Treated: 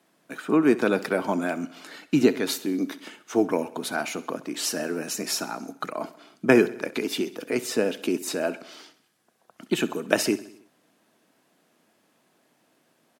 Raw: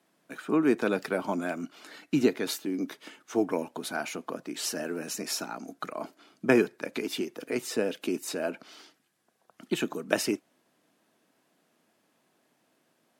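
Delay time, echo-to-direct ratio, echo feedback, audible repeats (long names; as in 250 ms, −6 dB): 65 ms, −16.0 dB, 59%, 4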